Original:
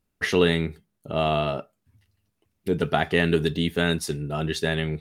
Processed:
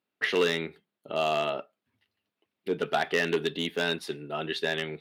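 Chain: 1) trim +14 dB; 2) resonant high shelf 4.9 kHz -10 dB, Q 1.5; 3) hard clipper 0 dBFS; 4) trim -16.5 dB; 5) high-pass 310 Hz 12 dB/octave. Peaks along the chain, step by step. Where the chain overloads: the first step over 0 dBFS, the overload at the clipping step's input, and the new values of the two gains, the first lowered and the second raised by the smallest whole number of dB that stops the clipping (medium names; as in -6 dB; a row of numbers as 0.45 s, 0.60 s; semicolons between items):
+9.0 dBFS, +9.5 dBFS, 0.0 dBFS, -16.5 dBFS, -11.0 dBFS; step 1, 9.5 dB; step 1 +4 dB, step 4 -6.5 dB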